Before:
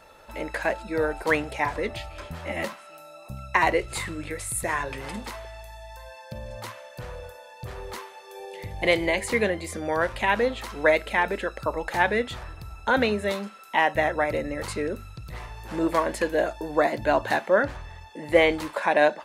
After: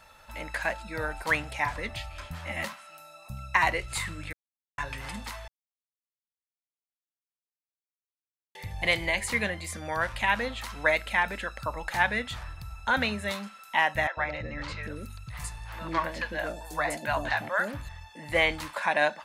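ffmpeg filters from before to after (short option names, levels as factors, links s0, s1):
-filter_complex "[0:a]asettb=1/sr,asplit=3[s0][s1][s2];[s0]atrim=end=14.074[s3];[s1]atrim=start=14.07:end=17.89,asetpts=PTS-STARTPTS,afade=t=in:d=0.004:c=qsin,afade=t=out:st=3.816:d=0.004:c=qsin,acrossover=split=540|5400[s4][s5][s6];[s4]adelay=100[s7];[s6]adelay=760[s8];[s7][s5][s8]amix=inputs=3:normalize=0,atrim=end_sample=168462[s9];[s2]atrim=start=17.886[s10];[s3][s9]acrossfade=d=0.004:c1=hsin:c2=qsin[s11];[s11][s10]acrossfade=d=0.004:c1=qsin:c2=hsin,asplit=5[s12][s13][s14][s15][s16];[s12]atrim=end=4.33,asetpts=PTS-STARTPTS,afade=t=out:st=4.326:d=0.004:c=hsin[s17];[s13]atrim=start=4.33:end=4.78,asetpts=PTS-STARTPTS,volume=0[s18];[s14]atrim=start=4.78:end=5.48,asetpts=PTS-STARTPTS,afade=t=in:d=0.004:c=hsin,afade=t=out:st=0.696:d=0.004:c=hsin[s19];[s15]atrim=start=5.48:end=8.55,asetpts=PTS-STARTPTS,volume=0[s20];[s16]atrim=start=8.55,asetpts=PTS-STARTPTS,afade=t=in:d=0.004:c=hsin[s21];[s17][s18][s19][s20][s21]concat=n=5:v=0:a=1,equalizer=f=400:t=o:w=1.3:g=-14"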